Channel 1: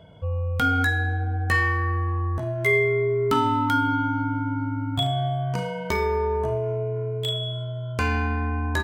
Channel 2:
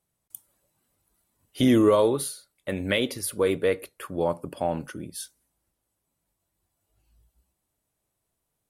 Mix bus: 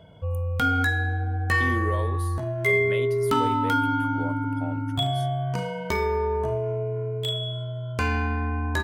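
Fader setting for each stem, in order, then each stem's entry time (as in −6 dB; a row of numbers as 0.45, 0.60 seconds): −1.0, −12.0 decibels; 0.00, 0.00 seconds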